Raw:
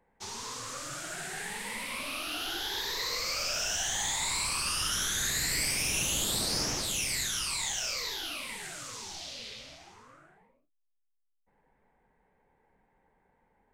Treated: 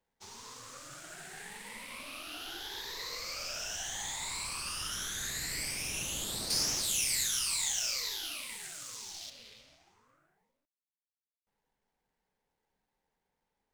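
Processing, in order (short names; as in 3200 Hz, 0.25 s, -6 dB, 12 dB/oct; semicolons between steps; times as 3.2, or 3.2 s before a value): G.711 law mismatch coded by A; 6.5–9.3 high shelf 3000 Hz +10.5 dB; gain -5.5 dB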